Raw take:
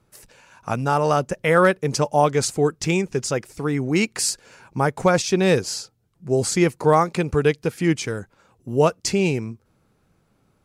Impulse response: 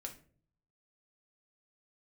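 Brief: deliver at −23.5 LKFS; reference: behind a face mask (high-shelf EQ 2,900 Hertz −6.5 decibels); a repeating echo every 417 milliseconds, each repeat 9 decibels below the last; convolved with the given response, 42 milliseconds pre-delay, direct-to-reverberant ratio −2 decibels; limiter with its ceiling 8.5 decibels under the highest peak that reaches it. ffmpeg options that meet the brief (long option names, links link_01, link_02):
-filter_complex "[0:a]alimiter=limit=-14dB:level=0:latency=1,aecho=1:1:417|834|1251|1668:0.355|0.124|0.0435|0.0152,asplit=2[link_01][link_02];[1:a]atrim=start_sample=2205,adelay=42[link_03];[link_02][link_03]afir=irnorm=-1:irlink=0,volume=5.5dB[link_04];[link_01][link_04]amix=inputs=2:normalize=0,highshelf=frequency=2900:gain=-6.5,volume=-2dB"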